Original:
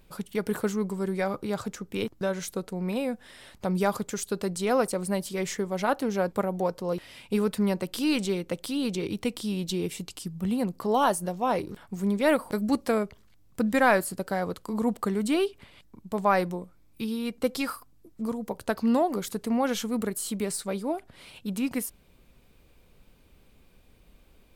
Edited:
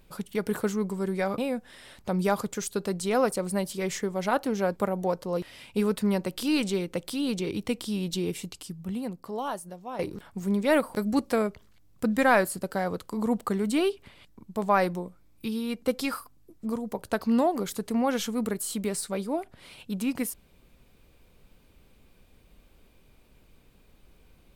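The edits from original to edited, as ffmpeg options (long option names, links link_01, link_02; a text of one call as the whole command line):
ffmpeg -i in.wav -filter_complex "[0:a]asplit=3[link_01][link_02][link_03];[link_01]atrim=end=1.382[link_04];[link_02]atrim=start=2.938:end=11.55,asetpts=PTS-STARTPTS,afade=type=out:start_time=6.952:duration=1.66:curve=qua:silence=0.266073[link_05];[link_03]atrim=start=11.55,asetpts=PTS-STARTPTS,afade=type=in:duration=0.004:curve=hsin:silence=0.266073[link_06];[link_05][link_06]concat=n=2:v=0:a=1[link_07];[link_04][link_07]acrossfade=duration=0.004:curve1=hsin:curve2=hsin" out.wav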